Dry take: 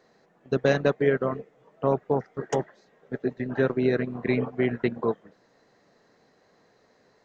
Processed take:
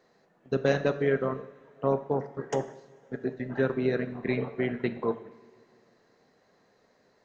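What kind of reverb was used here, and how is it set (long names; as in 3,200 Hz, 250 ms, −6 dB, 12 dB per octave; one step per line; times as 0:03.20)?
coupled-rooms reverb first 0.71 s, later 2.7 s, from −16 dB, DRR 9.5 dB
level −3.5 dB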